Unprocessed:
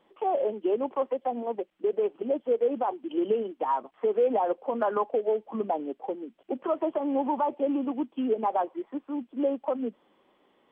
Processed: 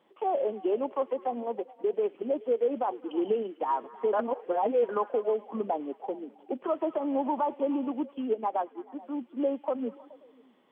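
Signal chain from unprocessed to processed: HPF 100 Hz; delay with a stepping band-pass 0.106 s, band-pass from 2700 Hz, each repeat -0.7 oct, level -12 dB; 4.13–4.89 reverse; 8.18–8.99 upward expander 1.5:1, over -34 dBFS; gain -1.5 dB

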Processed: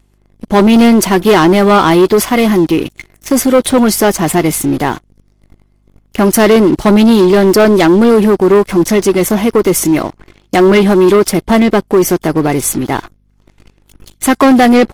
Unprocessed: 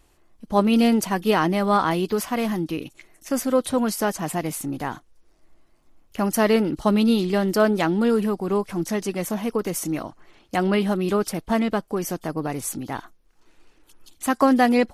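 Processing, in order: small resonant body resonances 370/2100/3400 Hz, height 8 dB, ringing for 45 ms; hum 50 Hz, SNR 30 dB; sample leveller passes 3; gain +3.5 dB

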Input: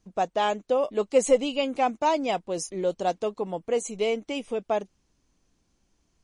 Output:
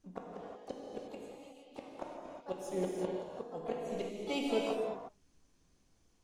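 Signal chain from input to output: flipped gate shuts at -20 dBFS, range -33 dB; harmoniser +4 st -16 dB, +7 st -9 dB; non-linear reverb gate 0.39 s flat, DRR -2.5 dB; gain -6 dB

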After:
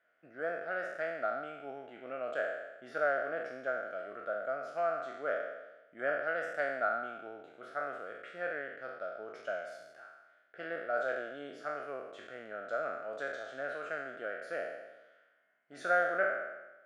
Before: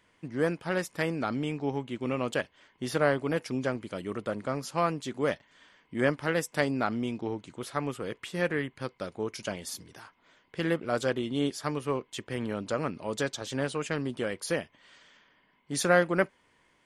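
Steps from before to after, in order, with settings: spectral trails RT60 1.06 s; double band-pass 970 Hz, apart 1.1 oct

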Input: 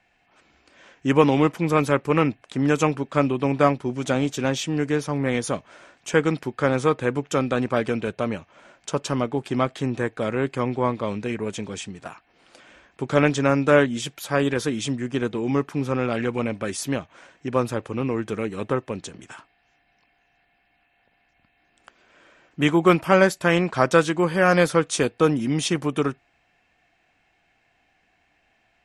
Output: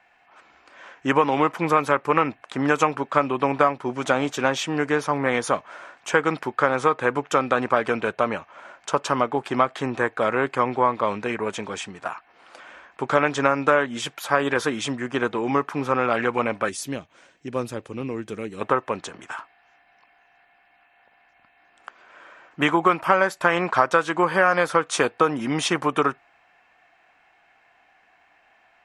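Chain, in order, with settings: bell 1100 Hz +12 dB 2.1 oct, from 16.69 s -4.5 dB, from 18.61 s +13 dB; compressor 6:1, threshold -12 dBFS, peak gain reduction 10 dB; low shelf 200 Hz -6.5 dB; gain -1.5 dB

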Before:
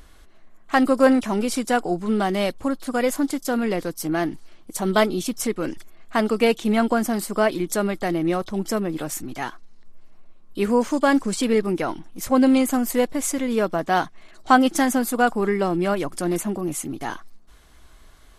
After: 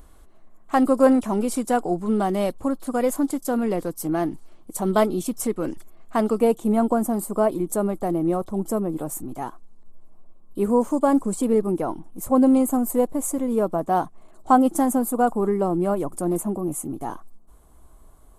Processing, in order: band shelf 3000 Hz -9 dB 2.3 oct, from 6.39 s -16 dB

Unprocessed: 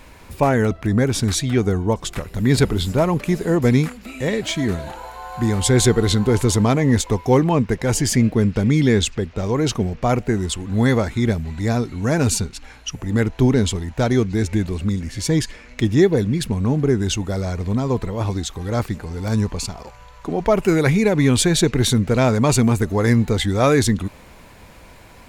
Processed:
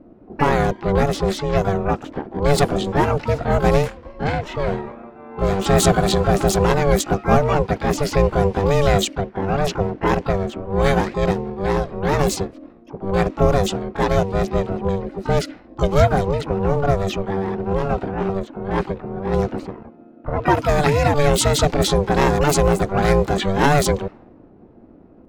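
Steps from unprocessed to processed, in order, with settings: ring modulator 290 Hz; low-pass opened by the level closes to 360 Hz, open at -14 dBFS; harmoniser +12 st -10 dB; gain +2.5 dB

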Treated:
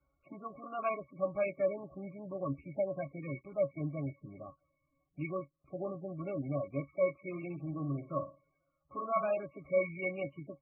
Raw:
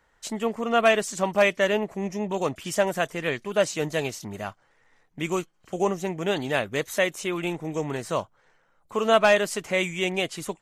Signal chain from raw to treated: octave resonator C#, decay 0.11 s; 7.27–9.46 flutter echo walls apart 9.7 m, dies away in 0.32 s; MP3 8 kbps 24000 Hz

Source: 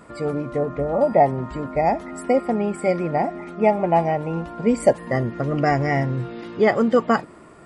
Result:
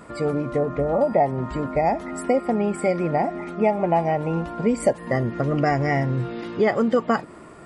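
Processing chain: compressor 2:1, threshold -22 dBFS, peak gain reduction 7 dB; gain +2.5 dB

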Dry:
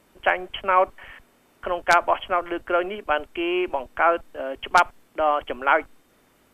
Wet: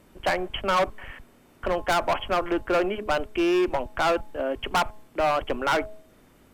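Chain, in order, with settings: low shelf 340 Hz +9 dB; hard clip -18.5 dBFS, distortion -6 dB; de-hum 212.5 Hz, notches 5

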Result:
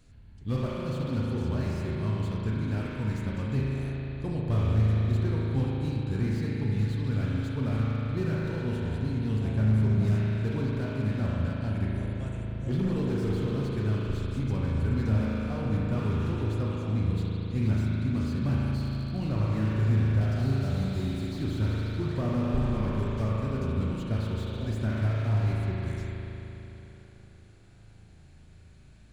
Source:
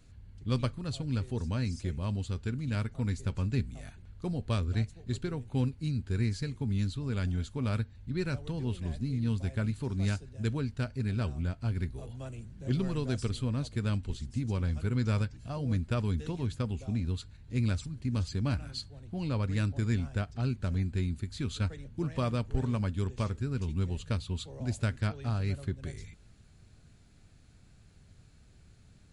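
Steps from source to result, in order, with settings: 20.21–21.36 resonant high shelf 2900 Hz +12 dB, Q 1.5; spring tank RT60 3.8 s, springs 37 ms, chirp 40 ms, DRR -3 dB; slew limiter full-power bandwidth 18 Hz

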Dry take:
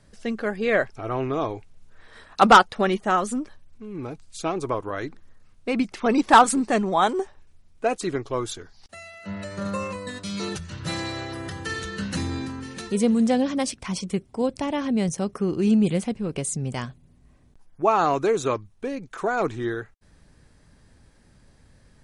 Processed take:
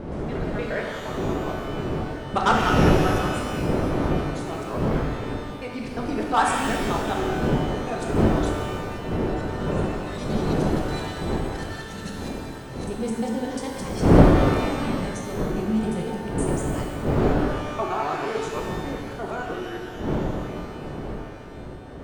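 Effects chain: local time reversal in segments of 0.117 s; wind noise 360 Hz -20 dBFS; shimmer reverb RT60 1.6 s, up +12 st, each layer -8 dB, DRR -0.5 dB; gain -9 dB

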